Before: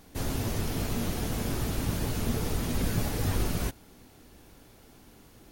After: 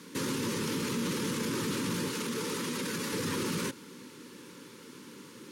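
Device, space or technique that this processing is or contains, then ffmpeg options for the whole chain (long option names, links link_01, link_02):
PA system with an anti-feedback notch: -filter_complex "[0:a]highpass=frequency=160:width=0.5412,highpass=frequency=160:width=1.3066,asuperstop=centerf=700:order=12:qfactor=2.2,alimiter=level_in=7.5dB:limit=-24dB:level=0:latency=1:release=31,volume=-7.5dB,lowpass=10000,asettb=1/sr,asplit=3[link_01][link_02][link_03];[link_01]atrim=end=2.084[link_04];[link_02]atrim=start=2.08:end=3.13,asetpts=PTS-STARTPTS,afade=type=in:duration=0.004:curve=qsin,afade=type=out:start_time=1.046:duration=0.004:curve=qsin,lowshelf=frequency=160:gain=-11.5[link_05];[link_03]atrim=start=3.126[link_06];[link_04][link_05]acrossfade=duration=0.004:curve1=hsin:curve2=qsin[link_07];[link_07][link_06]acrossfade=duration=0.004:curve1=qsin:curve2=hsin,volume=8dB"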